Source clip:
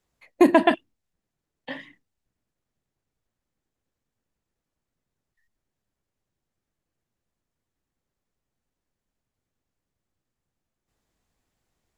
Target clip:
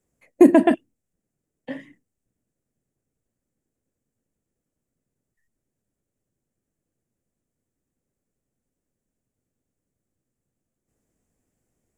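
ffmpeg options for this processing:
-af "equalizer=f=125:t=o:w=1:g=4,equalizer=f=250:t=o:w=1:g=6,equalizer=f=500:t=o:w=1:g=5,equalizer=f=1k:t=o:w=1:g=-6,equalizer=f=4k:t=o:w=1:g=-12,equalizer=f=8k:t=o:w=1:g=8,volume=-1dB"

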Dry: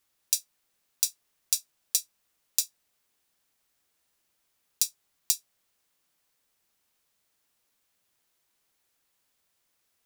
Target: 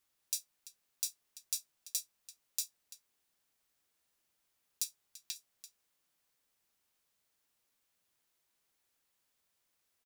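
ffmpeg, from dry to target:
-filter_complex "[0:a]asplit=2[a][b];[b]adelay=338.2,volume=-17dB,highshelf=f=4k:g=-7.61[c];[a][c]amix=inputs=2:normalize=0,asettb=1/sr,asplit=3[d][e][f];[d]atrim=end=4.844[g];[e]atrim=start=4.84:end=5.36,asetpts=PTS-STARTPTS,afade=t=in:d=0.004:c=qsin,afade=t=out:st=0.516:d=0.004:c=qsin,acrossover=split=4200[h][i];[i]acompressor=threshold=-34dB:ratio=4:attack=1:release=60[j];[h][j]amix=inputs=2:normalize=0[k];[f]atrim=start=5.356[l];[g][k]acrossfade=d=0.004:c1=hsin:c2=qsin[m];[m][l]acrossfade=d=0.004:c1=qsin:c2=hsin,alimiter=limit=-8.5dB:level=0:latency=1:release=35,volume=-5dB"

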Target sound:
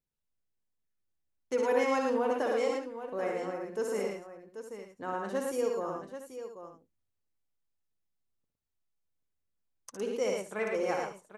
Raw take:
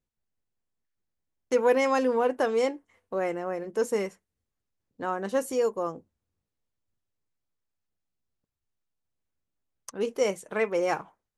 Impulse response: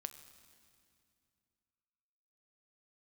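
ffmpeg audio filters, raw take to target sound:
-af "aecho=1:1:60|72|111|181|786|860:0.562|0.251|0.668|0.106|0.316|0.15,volume=-7dB"

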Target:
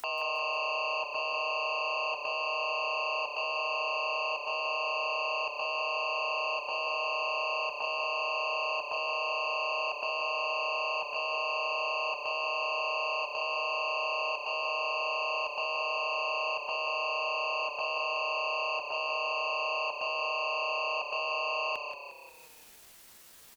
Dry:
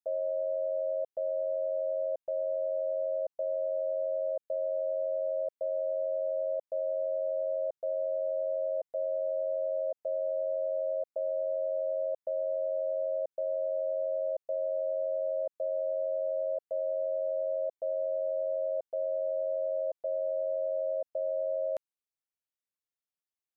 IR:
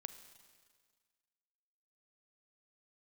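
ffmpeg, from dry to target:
-filter_complex "[0:a]aeval=exprs='0.0562*sin(PI/2*2.82*val(0)/0.0562)':c=same,alimiter=level_in=11.5dB:limit=-24dB:level=0:latency=1:release=18,volume=-11.5dB,afreqshift=-50,asetrate=70004,aresample=44100,atempo=0.629961,asplit=2[a][b];[b]aecho=0:1:156:0.224[c];[a][c]amix=inputs=2:normalize=0,acompressor=mode=upward:threshold=-42dB:ratio=2.5,asplit=2[d][e];[e]asplit=6[f][g][h][i][j][k];[f]adelay=178,afreqshift=-32,volume=-8dB[l];[g]adelay=356,afreqshift=-64,volume=-13.7dB[m];[h]adelay=534,afreqshift=-96,volume=-19.4dB[n];[i]adelay=712,afreqshift=-128,volume=-25dB[o];[j]adelay=890,afreqshift=-160,volume=-30.7dB[p];[k]adelay=1068,afreqshift=-192,volume=-36.4dB[q];[l][m][n][o][p][q]amix=inputs=6:normalize=0[r];[d][r]amix=inputs=2:normalize=0,volume=6dB"

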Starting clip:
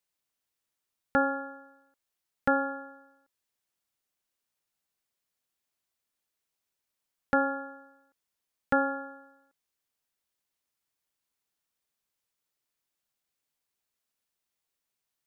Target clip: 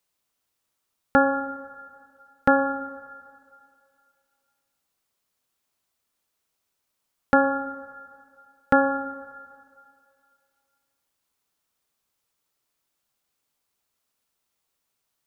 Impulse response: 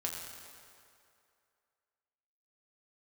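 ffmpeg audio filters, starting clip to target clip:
-filter_complex "[0:a]asplit=2[a][b];[b]highshelf=f=2k:t=q:w=3:g=-13[c];[1:a]atrim=start_sample=2205[d];[c][d]afir=irnorm=-1:irlink=0,volume=-12.5dB[e];[a][e]amix=inputs=2:normalize=0,volume=6dB"

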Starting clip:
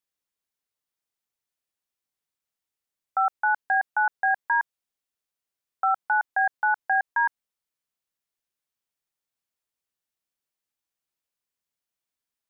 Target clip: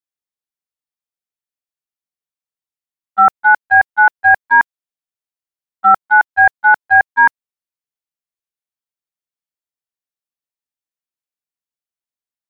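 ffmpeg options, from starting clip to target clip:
-af "apsyclip=26.5dB,agate=range=-32dB:threshold=-6dB:ratio=16:detection=peak,volume=-1.5dB"

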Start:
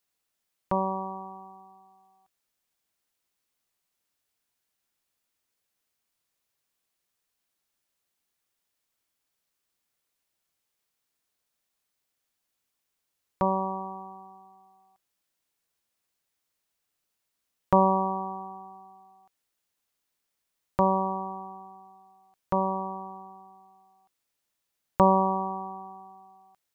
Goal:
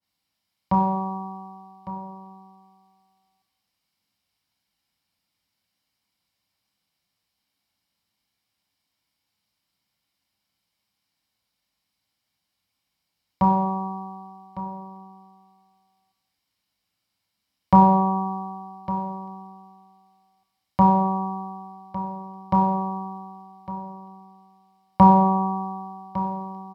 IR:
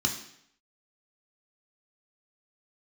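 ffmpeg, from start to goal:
-filter_complex "[0:a]aecho=1:1:1155:0.211[a];[1:a]atrim=start_sample=2205,asetrate=33516,aresample=44100[b];[a][b]afir=irnorm=-1:irlink=0,adynamicequalizer=threshold=0.0447:dfrequency=1800:dqfactor=0.7:tfrequency=1800:tqfactor=0.7:attack=5:release=100:ratio=0.375:range=3:mode=boostabove:tftype=highshelf,volume=-6.5dB"

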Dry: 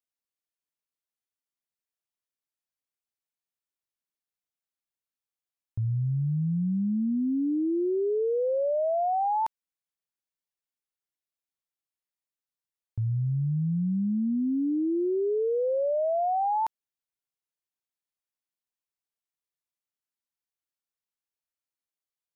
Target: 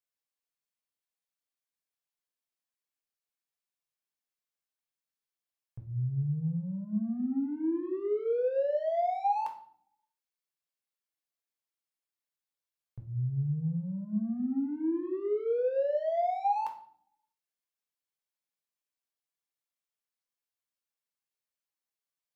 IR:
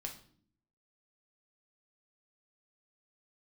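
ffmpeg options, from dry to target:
-filter_complex "[0:a]lowshelf=f=170:g=-11.5,asplit=2[a][b];[b]asoftclip=type=tanh:threshold=-34.5dB,volume=-7dB[c];[a][c]amix=inputs=2:normalize=0[d];[1:a]atrim=start_sample=2205[e];[d][e]afir=irnorm=-1:irlink=0,volume=-2dB"

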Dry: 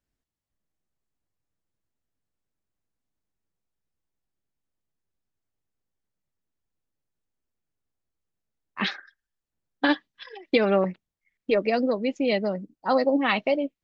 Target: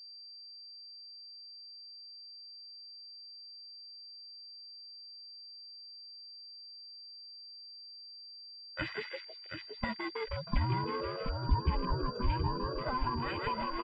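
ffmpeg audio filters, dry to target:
-filter_complex "[0:a]afftfilt=real='real(if(between(b,1,1008),(2*floor((b-1)/24)+1)*24-b,b),0)':imag='imag(if(between(b,1,1008),(2*floor((b-1)/24)+1)*24-b,b),0)*if(between(b,1,1008),-1,1)':win_size=2048:overlap=0.75,asplit=2[a][b];[b]asplit=7[c][d][e][f][g][h][i];[c]adelay=158,afreqshift=110,volume=-6dB[j];[d]adelay=316,afreqshift=220,volume=-11.5dB[k];[e]adelay=474,afreqshift=330,volume=-17dB[l];[f]adelay=632,afreqshift=440,volume=-22.5dB[m];[g]adelay=790,afreqshift=550,volume=-28.1dB[n];[h]adelay=948,afreqshift=660,volume=-33.6dB[o];[i]adelay=1106,afreqshift=770,volume=-39.1dB[p];[j][k][l][m][n][o][p]amix=inputs=7:normalize=0[q];[a][q]amix=inputs=2:normalize=0,acompressor=threshold=-29dB:ratio=8,asplit=2[r][s];[s]aecho=0:1:727:0.473[t];[r][t]amix=inputs=2:normalize=0,afwtdn=0.0126,bass=f=250:g=9,treble=f=4k:g=3,aecho=1:1:2:0.53,aeval=exprs='val(0)+0.00794*sin(2*PI*4700*n/s)':c=same,volume=-5.5dB"

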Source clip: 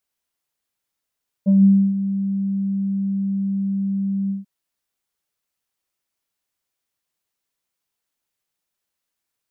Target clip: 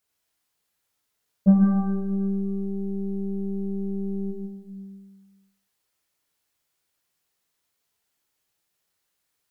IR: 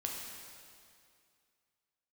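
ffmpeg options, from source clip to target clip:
-filter_complex "[0:a]aeval=exprs='0.422*(cos(1*acos(clip(val(0)/0.422,-1,1)))-cos(1*PI/2))+0.0106*(cos(8*acos(clip(val(0)/0.422,-1,1)))-cos(8*PI/2))':c=same[a];[1:a]atrim=start_sample=2205,asetrate=70560,aresample=44100[b];[a][b]afir=irnorm=-1:irlink=0,volume=7.5dB"

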